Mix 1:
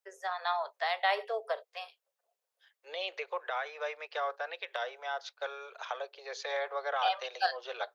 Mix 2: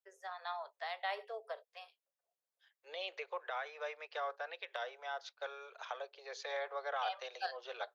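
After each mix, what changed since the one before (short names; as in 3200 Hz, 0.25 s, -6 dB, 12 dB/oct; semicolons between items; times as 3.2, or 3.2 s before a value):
first voice -10.0 dB; second voice -5.5 dB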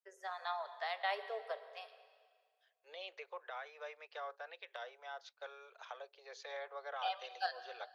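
second voice -5.5 dB; reverb: on, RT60 1.8 s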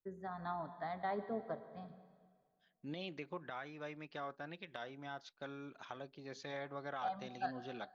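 first voice: add running mean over 16 samples; master: remove steep high-pass 440 Hz 72 dB/oct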